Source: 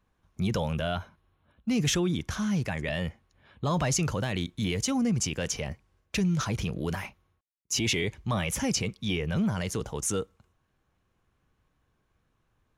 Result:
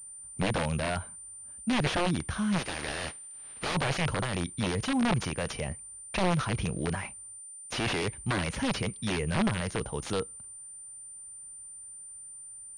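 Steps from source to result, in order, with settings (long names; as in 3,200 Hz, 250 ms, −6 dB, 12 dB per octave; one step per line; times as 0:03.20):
0:02.58–0:03.74: compressing power law on the bin magnitudes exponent 0.24
wrap-around overflow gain 21 dB
switching amplifier with a slow clock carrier 9,100 Hz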